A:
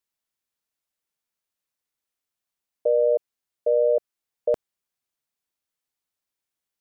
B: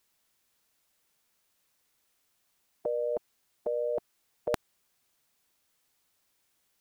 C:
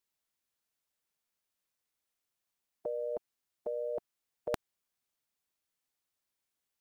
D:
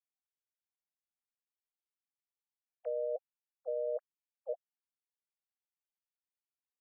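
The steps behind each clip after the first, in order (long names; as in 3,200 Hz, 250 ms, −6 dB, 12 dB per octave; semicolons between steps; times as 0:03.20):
every bin compressed towards the loudest bin 2 to 1
expander for the loud parts 1.5 to 1, over −46 dBFS; level −3.5 dB
three sine waves on the formant tracks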